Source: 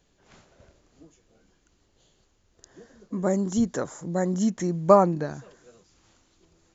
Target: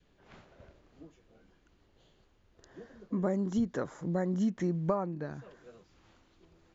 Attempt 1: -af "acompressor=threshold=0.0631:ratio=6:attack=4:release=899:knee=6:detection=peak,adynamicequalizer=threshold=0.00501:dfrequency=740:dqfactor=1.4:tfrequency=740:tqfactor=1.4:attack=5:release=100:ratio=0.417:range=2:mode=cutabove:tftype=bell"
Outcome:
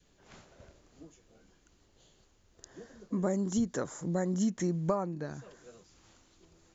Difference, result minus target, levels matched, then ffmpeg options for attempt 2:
4 kHz band +5.0 dB
-af "acompressor=threshold=0.0631:ratio=6:attack=4:release=899:knee=6:detection=peak,adynamicequalizer=threshold=0.00501:dfrequency=740:dqfactor=1.4:tfrequency=740:tqfactor=1.4:attack=5:release=100:ratio=0.417:range=2:mode=cutabove:tftype=bell,lowpass=3400"

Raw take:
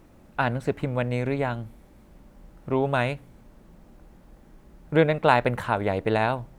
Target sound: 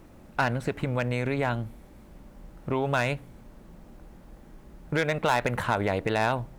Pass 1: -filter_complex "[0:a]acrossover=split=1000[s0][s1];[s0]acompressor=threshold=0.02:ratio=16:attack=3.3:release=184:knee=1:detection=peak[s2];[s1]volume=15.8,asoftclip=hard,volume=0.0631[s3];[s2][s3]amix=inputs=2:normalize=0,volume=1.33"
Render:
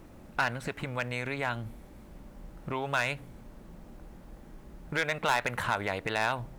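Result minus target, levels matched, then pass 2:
compression: peak gain reduction +9 dB
-filter_complex "[0:a]acrossover=split=1000[s0][s1];[s0]acompressor=threshold=0.0596:ratio=16:attack=3.3:release=184:knee=1:detection=peak[s2];[s1]volume=15.8,asoftclip=hard,volume=0.0631[s3];[s2][s3]amix=inputs=2:normalize=0,volume=1.33"

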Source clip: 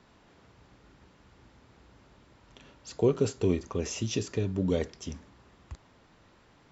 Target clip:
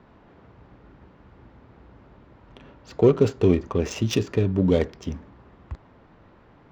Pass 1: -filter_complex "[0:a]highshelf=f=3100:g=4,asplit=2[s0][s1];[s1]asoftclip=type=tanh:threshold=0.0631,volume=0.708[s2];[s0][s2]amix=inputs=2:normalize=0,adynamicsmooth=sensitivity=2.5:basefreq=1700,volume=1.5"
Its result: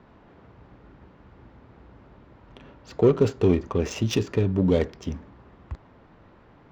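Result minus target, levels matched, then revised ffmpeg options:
saturation: distortion +13 dB
-filter_complex "[0:a]highshelf=f=3100:g=4,asplit=2[s0][s1];[s1]asoftclip=type=tanh:threshold=0.2,volume=0.708[s2];[s0][s2]amix=inputs=2:normalize=0,adynamicsmooth=sensitivity=2.5:basefreq=1700,volume=1.5"

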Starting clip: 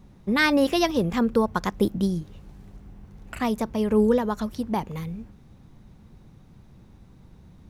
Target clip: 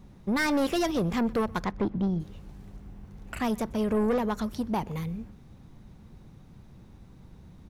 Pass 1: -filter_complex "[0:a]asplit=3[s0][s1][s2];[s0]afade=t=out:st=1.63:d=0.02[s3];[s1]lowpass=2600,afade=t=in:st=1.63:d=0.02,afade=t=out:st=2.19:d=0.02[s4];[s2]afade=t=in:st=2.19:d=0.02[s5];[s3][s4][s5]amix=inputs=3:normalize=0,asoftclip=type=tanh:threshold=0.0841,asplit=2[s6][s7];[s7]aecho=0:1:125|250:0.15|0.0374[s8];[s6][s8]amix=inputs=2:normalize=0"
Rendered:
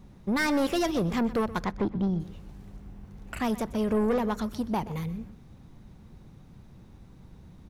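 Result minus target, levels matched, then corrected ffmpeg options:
echo-to-direct +7.5 dB
-filter_complex "[0:a]asplit=3[s0][s1][s2];[s0]afade=t=out:st=1.63:d=0.02[s3];[s1]lowpass=2600,afade=t=in:st=1.63:d=0.02,afade=t=out:st=2.19:d=0.02[s4];[s2]afade=t=in:st=2.19:d=0.02[s5];[s3][s4][s5]amix=inputs=3:normalize=0,asoftclip=type=tanh:threshold=0.0841,asplit=2[s6][s7];[s7]aecho=0:1:125|250:0.0631|0.0158[s8];[s6][s8]amix=inputs=2:normalize=0"

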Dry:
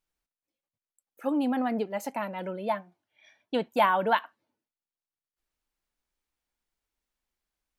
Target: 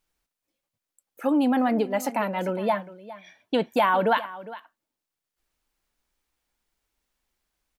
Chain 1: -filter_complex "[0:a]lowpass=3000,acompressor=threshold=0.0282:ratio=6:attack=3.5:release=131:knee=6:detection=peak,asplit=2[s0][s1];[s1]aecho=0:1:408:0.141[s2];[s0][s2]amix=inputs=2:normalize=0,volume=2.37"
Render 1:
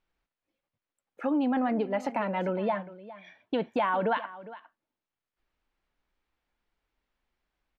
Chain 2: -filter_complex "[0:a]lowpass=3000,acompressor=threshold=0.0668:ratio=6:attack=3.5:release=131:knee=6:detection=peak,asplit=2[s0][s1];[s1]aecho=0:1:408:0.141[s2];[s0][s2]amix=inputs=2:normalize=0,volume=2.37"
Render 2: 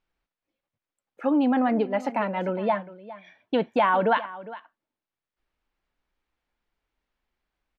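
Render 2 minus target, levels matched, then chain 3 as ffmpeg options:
4 kHz band -3.5 dB
-filter_complex "[0:a]acompressor=threshold=0.0668:ratio=6:attack=3.5:release=131:knee=6:detection=peak,asplit=2[s0][s1];[s1]aecho=0:1:408:0.141[s2];[s0][s2]amix=inputs=2:normalize=0,volume=2.37"

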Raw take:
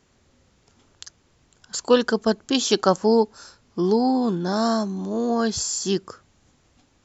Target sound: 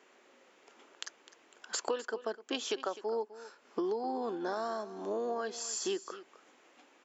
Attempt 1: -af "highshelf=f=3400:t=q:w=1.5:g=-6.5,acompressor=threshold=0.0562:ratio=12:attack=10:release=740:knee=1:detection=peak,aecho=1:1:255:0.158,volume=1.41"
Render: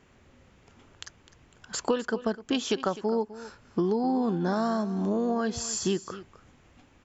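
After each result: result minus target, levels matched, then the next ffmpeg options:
compression: peak gain reduction -7 dB; 250 Hz band +5.5 dB
-af "highshelf=f=3400:t=q:w=1.5:g=-6.5,acompressor=threshold=0.0211:ratio=12:attack=10:release=740:knee=1:detection=peak,aecho=1:1:255:0.158,volume=1.41"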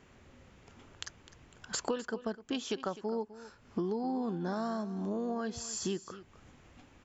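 250 Hz band +5.5 dB
-af "highpass=f=330:w=0.5412,highpass=f=330:w=1.3066,highshelf=f=3400:t=q:w=1.5:g=-6.5,acompressor=threshold=0.0211:ratio=12:attack=10:release=740:knee=1:detection=peak,aecho=1:1:255:0.158,volume=1.41"

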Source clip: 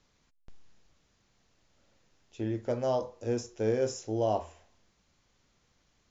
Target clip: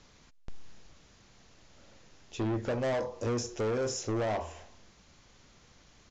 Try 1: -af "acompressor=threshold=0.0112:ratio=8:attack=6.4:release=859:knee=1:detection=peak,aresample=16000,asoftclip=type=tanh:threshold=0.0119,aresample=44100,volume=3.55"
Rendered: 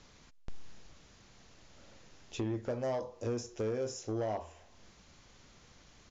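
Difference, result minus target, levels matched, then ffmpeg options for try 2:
compression: peak gain reduction +9 dB
-af "acompressor=threshold=0.0355:ratio=8:attack=6.4:release=859:knee=1:detection=peak,aresample=16000,asoftclip=type=tanh:threshold=0.0119,aresample=44100,volume=3.55"

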